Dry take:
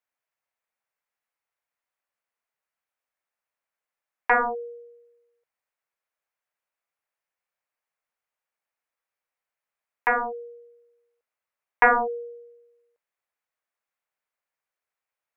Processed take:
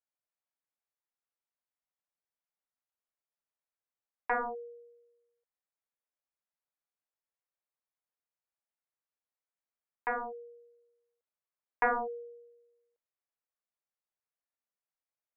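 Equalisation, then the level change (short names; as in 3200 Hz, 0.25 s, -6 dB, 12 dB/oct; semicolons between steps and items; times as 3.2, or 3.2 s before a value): LPF 1300 Hz 6 dB/oct; -8.5 dB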